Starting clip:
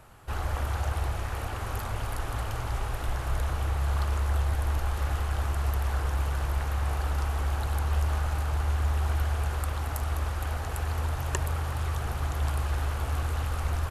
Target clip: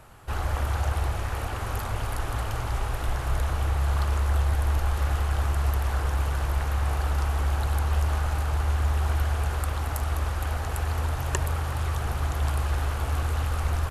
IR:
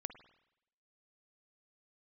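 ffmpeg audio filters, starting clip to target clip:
-filter_complex "[0:a]asplit=2[a][b];[1:a]atrim=start_sample=2205,asetrate=25137,aresample=44100[c];[b][c]afir=irnorm=-1:irlink=0,volume=-8.5dB[d];[a][d]amix=inputs=2:normalize=0"

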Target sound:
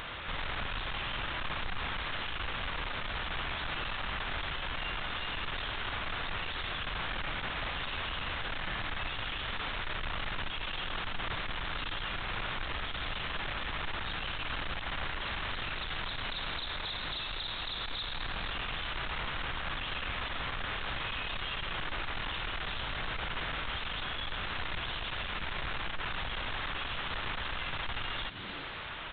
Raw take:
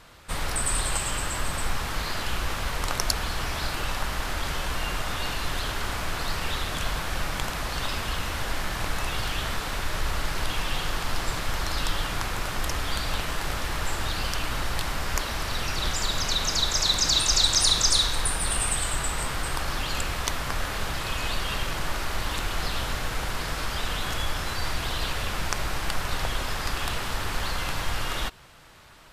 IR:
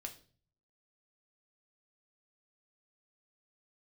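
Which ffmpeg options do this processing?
-filter_complex "[0:a]aresample=8000,asoftclip=type=tanh:threshold=-28.5dB,aresample=44100,acontrast=48,crystalizer=i=9.5:c=0,asplit=2[a][b];[b]asplit=6[c][d][e][f][g][h];[c]adelay=106,afreqshift=88,volume=-17.5dB[i];[d]adelay=212,afreqshift=176,volume=-21.5dB[j];[e]adelay=318,afreqshift=264,volume=-25.5dB[k];[f]adelay=424,afreqshift=352,volume=-29.5dB[l];[g]adelay=530,afreqshift=440,volume=-33.6dB[m];[h]adelay=636,afreqshift=528,volume=-37.6dB[n];[i][j][k][l][m][n]amix=inputs=6:normalize=0[o];[a][o]amix=inputs=2:normalize=0,alimiter=level_in=1dB:limit=-24dB:level=0:latency=1:release=267,volume=-1dB,aemphasis=mode=reproduction:type=75kf,acompressor=mode=upward:threshold=-43dB:ratio=2.5"

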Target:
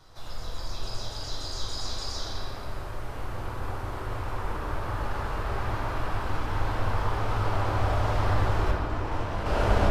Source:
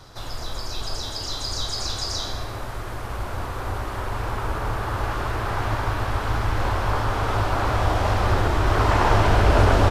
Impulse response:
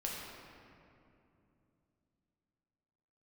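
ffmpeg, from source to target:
-filter_complex "[0:a]asettb=1/sr,asplit=3[a][b][c];[a]atrim=end=8.714[d];[b]atrim=start=8.71:end=9.46,asetpts=PTS-STARTPTS,afade=t=in:d=0.004:c=qsin,afade=t=out:st=0.746:d=0.004:c=qsin,agate=range=-33dB:threshold=-9dB:ratio=3:detection=peak[e];[c]atrim=start=9.456[f];[d][e]acrossfade=d=0.004:c1=hsin:c2=qsin[g];[g][f]acrossfade=d=0.004:c1=qsin:c2=hsin[h];[1:a]atrim=start_sample=2205[i];[h][i]afir=irnorm=-1:irlink=0,volume=-8dB"

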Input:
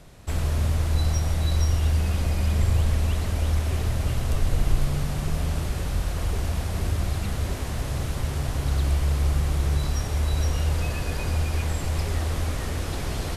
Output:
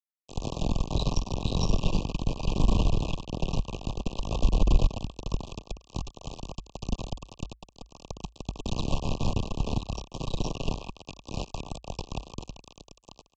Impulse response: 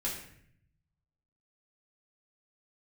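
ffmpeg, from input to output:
-af "aresample=16000,acrusher=bits=2:mix=0:aa=0.5,aresample=44100,afreqshift=-56,asuperstop=centerf=1700:order=20:qfactor=1.3,adynamicequalizer=threshold=0.00282:dfrequency=4600:dqfactor=0.7:tfrequency=4600:tqfactor=0.7:attack=5:release=100:ratio=0.375:range=3.5:mode=cutabove:tftype=highshelf"

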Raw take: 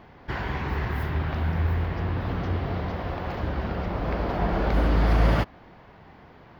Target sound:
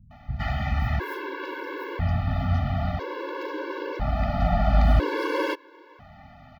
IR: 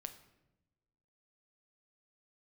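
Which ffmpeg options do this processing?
-filter_complex "[0:a]acrossover=split=180[a][b];[b]adelay=110[c];[a][c]amix=inputs=2:normalize=0,afftfilt=real='re*gt(sin(2*PI*0.5*pts/sr)*(1-2*mod(floor(b*sr/1024/290),2)),0)':imag='im*gt(sin(2*PI*0.5*pts/sr)*(1-2*mod(floor(b*sr/1024/290),2)),0)':win_size=1024:overlap=0.75,volume=4.5dB"

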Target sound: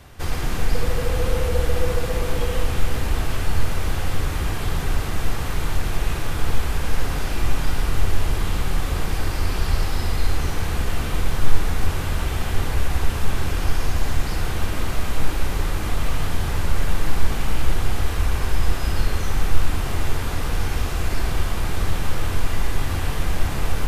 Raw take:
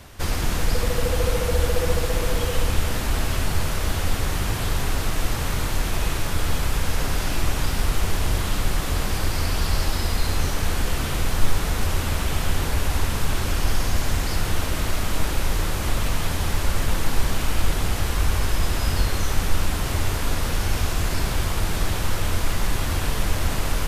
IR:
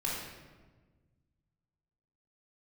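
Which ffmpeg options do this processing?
-filter_complex "[0:a]asplit=2[a][b];[1:a]atrim=start_sample=2205,lowpass=3.9k[c];[b][c]afir=irnorm=-1:irlink=0,volume=-7dB[d];[a][d]amix=inputs=2:normalize=0,volume=-4.5dB"

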